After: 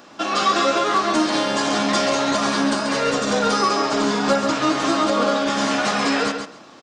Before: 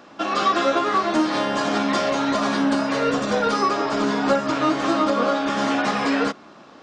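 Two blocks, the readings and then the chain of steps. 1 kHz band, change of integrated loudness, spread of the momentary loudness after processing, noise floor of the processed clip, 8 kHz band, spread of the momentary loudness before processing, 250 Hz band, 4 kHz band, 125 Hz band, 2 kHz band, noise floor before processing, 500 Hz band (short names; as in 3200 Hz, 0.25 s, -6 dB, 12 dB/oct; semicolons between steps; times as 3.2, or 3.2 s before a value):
+1.5 dB, +1.5 dB, 2 LU, -44 dBFS, +8.5 dB, 2 LU, 0.0 dB, +5.5 dB, +1.5 dB, +2.0 dB, -46 dBFS, +1.0 dB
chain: high shelf 4700 Hz +11.5 dB; on a send: feedback echo 0.136 s, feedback 16%, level -7 dB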